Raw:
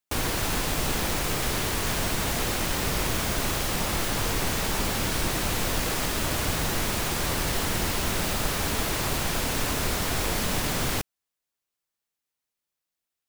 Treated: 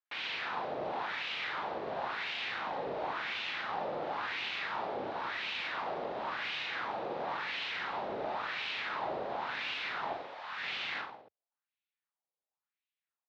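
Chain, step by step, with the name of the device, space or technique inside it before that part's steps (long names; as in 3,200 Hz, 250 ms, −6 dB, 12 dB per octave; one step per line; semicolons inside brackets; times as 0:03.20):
0:10.13–0:10.63: high-pass filter 1,300 Hz 12 dB per octave
reverse bouncing-ball delay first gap 40 ms, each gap 1.15×, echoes 5
wah-wah guitar rig (LFO wah 0.95 Hz 530–2,700 Hz, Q 2.5; tube saturation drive 27 dB, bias 0.45; loudspeaker in its box 77–4,400 Hz, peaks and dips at 84 Hz −8 dB, 830 Hz +4 dB, 3,800 Hz +4 dB)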